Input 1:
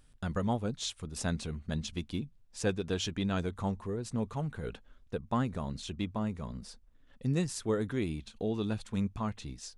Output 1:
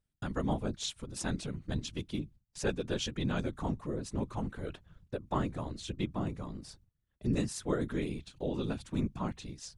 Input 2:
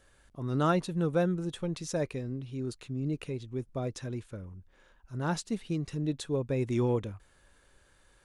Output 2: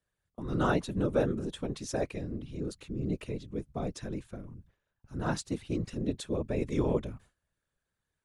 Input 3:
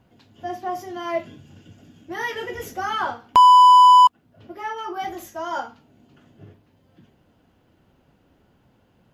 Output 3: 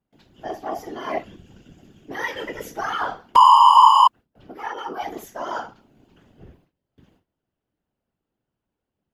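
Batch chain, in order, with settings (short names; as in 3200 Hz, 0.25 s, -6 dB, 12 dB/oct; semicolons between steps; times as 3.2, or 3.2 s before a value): whisperiser; gate with hold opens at -47 dBFS; gain -1 dB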